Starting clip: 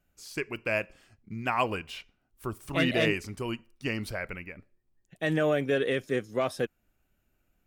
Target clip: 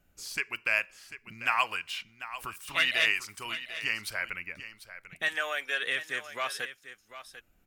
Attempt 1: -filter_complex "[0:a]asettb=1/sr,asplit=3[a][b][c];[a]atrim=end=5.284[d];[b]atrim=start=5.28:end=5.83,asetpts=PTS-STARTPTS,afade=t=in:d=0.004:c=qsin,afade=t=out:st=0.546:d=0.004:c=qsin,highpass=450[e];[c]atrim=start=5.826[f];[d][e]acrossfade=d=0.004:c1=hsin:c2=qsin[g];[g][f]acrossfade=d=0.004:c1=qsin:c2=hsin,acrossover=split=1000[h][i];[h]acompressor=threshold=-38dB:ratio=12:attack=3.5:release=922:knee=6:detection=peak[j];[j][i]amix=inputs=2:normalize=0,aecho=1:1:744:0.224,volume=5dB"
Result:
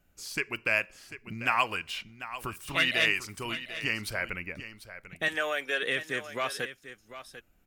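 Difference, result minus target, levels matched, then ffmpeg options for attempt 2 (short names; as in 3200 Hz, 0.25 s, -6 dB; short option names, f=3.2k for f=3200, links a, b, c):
compressor: peak gain reduction -11 dB
-filter_complex "[0:a]asettb=1/sr,asplit=3[a][b][c];[a]atrim=end=5.284[d];[b]atrim=start=5.28:end=5.83,asetpts=PTS-STARTPTS,afade=t=in:d=0.004:c=qsin,afade=t=out:st=0.546:d=0.004:c=qsin,highpass=450[e];[c]atrim=start=5.826[f];[d][e]acrossfade=d=0.004:c1=hsin:c2=qsin[g];[g][f]acrossfade=d=0.004:c1=qsin:c2=hsin,acrossover=split=1000[h][i];[h]acompressor=threshold=-50dB:ratio=12:attack=3.5:release=922:knee=6:detection=peak[j];[j][i]amix=inputs=2:normalize=0,aecho=1:1:744:0.224,volume=5dB"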